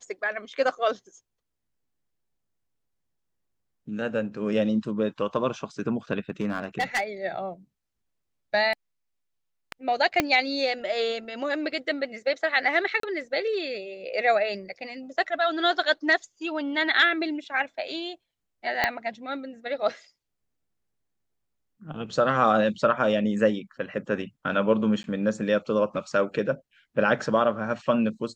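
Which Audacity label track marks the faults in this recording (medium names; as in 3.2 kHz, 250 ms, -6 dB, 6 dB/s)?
6.300000	7.040000	clipped -20.5 dBFS
10.200000	10.200000	pop -6 dBFS
13.000000	13.030000	dropout 33 ms
18.840000	18.840000	pop -8 dBFS
25.030000	25.040000	dropout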